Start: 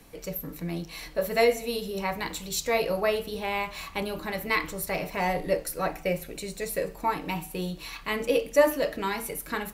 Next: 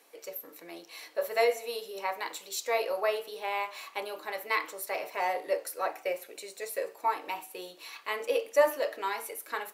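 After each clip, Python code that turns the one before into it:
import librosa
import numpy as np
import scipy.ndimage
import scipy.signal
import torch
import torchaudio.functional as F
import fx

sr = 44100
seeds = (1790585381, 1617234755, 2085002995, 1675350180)

y = scipy.signal.sosfilt(scipy.signal.butter(4, 380.0, 'highpass', fs=sr, output='sos'), x)
y = fx.dynamic_eq(y, sr, hz=980.0, q=0.89, threshold_db=-38.0, ratio=4.0, max_db=4)
y = y * 10.0 ** (-5.0 / 20.0)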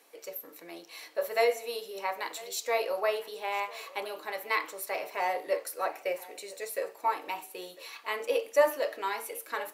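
y = x + 10.0 ** (-20.5 / 20.0) * np.pad(x, (int(1001 * sr / 1000.0), 0))[:len(x)]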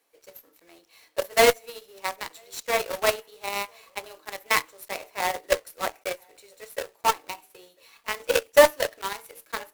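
y = fx.block_float(x, sr, bits=3)
y = fx.cheby_harmonics(y, sr, harmonics=(6, 7, 8), levels_db=(-21, -18, -25), full_scale_db=-12.0)
y = y * 10.0 ** (8.0 / 20.0)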